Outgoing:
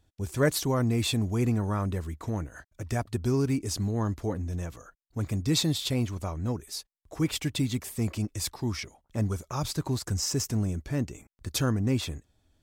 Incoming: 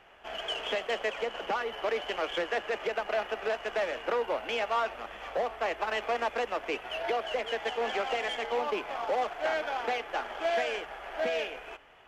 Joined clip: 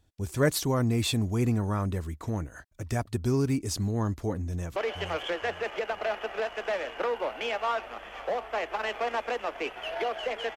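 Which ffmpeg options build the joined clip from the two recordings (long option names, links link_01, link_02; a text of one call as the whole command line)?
ffmpeg -i cue0.wav -i cue1.wav -filter_complex "[0:a]apad=whole_dur=10.56,atrim=end=10.56,atrim=end=4.762[link_01];[1:a]atrim=start=1.838:end=7.64[link_02];[link_01][link_02]acrossfade=duration=0.004:curve1=hsin:curve2=hsin,asplit=2[link_03][link_04];[link_04]afade=type=in:start_time=4.48:duration=0.01,afade=type=out:start_time=4.76:duration=0.01,aecho=0:1:470|940|1410|1880:0.398107|0.119432|0.0358296|0.0107489[link_05];[link_03][link_05]amix=inputs=2:normalize=0" out.wav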